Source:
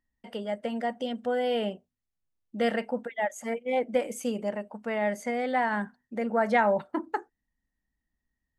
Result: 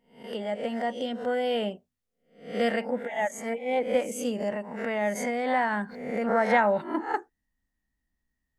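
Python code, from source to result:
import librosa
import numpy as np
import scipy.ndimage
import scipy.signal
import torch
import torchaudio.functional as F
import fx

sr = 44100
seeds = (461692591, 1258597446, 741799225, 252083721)

y = fx.spec_swells(x, sr, rise_s=0.44)
y = fx.pre_swell(y, sr, db_per_s=58.0, at=(4.4, 6.48))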